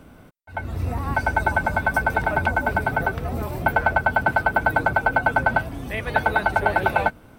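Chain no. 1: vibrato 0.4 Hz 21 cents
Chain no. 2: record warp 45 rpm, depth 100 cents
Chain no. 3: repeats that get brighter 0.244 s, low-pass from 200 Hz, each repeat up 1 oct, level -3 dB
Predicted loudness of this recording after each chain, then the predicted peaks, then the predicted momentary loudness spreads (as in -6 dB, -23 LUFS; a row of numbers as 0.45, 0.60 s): -22.0, -22.0, -21.5 LUFS; -5.0, -5.0, -4.0 dBFS; 8, 8, 6 LU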